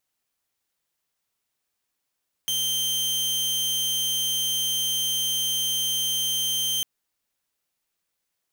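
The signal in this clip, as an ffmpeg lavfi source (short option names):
-f lavfi -i "aevalsrc='0.0944*(2*mod(3140*t,1)-1)':d=4.35:s=44100"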